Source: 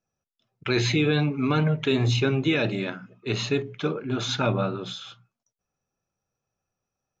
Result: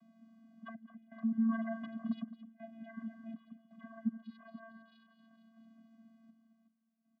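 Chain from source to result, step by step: formants replaced by sine waves; tilt EQ -2 dB/octave; compression 4:1, threshold -29 dBFS, peak gain reduction 16.5 dB; peak limiter -25.5 dBFS, peak gain reduction 5.5 dB; static phaser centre 620 Hz, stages 6; added noise brown -53 dBFS; on a send: two-band feedback delay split 380 Hz, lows 130 ms, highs 228 ms, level -15 dB; on the sum: random-step tremolo 2.7 Hz, depth 95%; vocoder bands 16, square 225 Hz; delay 214 ms -15 dB; trim +2 dB

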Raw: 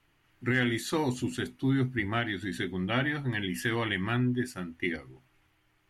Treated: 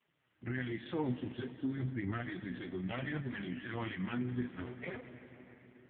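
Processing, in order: 4.52–4.96 s: cycle switcher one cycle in 2, inverted; peak limiter -24.5 dBFS, peak gain reduction 8.5 dB; flange 1.2 Hz, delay 4 ms, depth 6.4 ms, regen +21%; algorithmic reverb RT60 4.7 s, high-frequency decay 0.65×, pre-delay 90 ms, DRR 10 dB; AMR-NB 4.75 kbps 8 kHz

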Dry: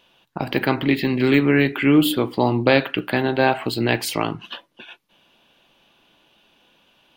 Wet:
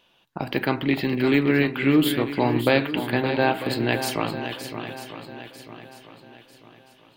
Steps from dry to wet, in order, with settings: shuffle delay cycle 946 ms, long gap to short 1.5:1, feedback 37%, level -9.5 dB; trim -3.5 dB

